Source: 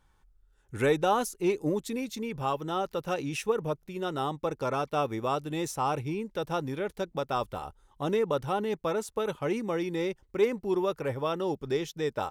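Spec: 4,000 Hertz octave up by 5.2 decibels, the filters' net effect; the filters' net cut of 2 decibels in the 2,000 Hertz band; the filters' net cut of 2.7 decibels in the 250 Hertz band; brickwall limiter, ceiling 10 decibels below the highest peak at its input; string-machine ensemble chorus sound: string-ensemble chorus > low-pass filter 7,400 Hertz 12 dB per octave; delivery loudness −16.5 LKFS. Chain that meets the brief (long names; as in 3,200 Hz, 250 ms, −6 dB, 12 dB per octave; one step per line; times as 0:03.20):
parametric band 250 Hz −4 dB
parametric band 2,000 Hz −5.5 dB
parametric band 4,000 Hz +8.5 dB
brickwall limiter −24.5 dBFS
string-ensemble chorus
low-pass filter 7,400 Hz 12 dB per octave
level +21.5 dB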